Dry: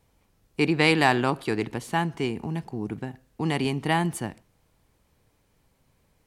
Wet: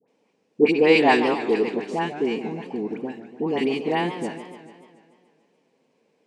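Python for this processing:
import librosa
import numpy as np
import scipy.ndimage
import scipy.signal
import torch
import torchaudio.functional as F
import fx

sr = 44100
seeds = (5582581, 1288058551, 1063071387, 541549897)

p1 = fx.high_shelf(x, sr, hz=2000.0, db=-7.5)
p2 = fx.level_steps(p1, sr, step_db=20)
p3 = p1 + (p2 * librosa.db_to_amplitude(0.0))
p4 = fx.cabinet(p3, sr, low_hz=210.0, low_slope=24, high_hz=8100.0, hz=(240.0, 460.0, 1300.0, 2600.0, 5200.0), db=(3, 9, -7, 6, 3))
p5 = fx.quant_float(p4, sr, bits=8, at=(3.03, 3.84))
p6 = fx.dispersion(p5, sr, late='highs', ms=81.0, hz=1200.0)
y = fx.echo_warbled(p6, sr, ms=145, feedback_pct=62, rate_hz=2.8, cents=201, wet_db=-11.5)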